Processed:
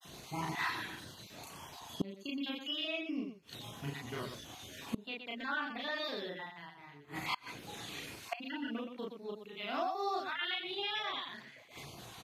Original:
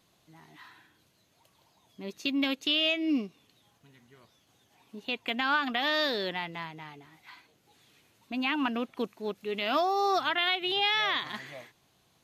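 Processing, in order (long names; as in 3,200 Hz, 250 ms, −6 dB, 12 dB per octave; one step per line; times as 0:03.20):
time-frequency cells dropped at random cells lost 31%
granular cloud 100 ms, grains 20 per second, spray 18 ms, pitch spread up and down by 0 semitones
loudspeakers that aren't time-aligned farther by 12 metres 0 dB, 42 metres −6 dB
gate with flip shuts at −39 dBFS, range −27 dB
level +16.5 dB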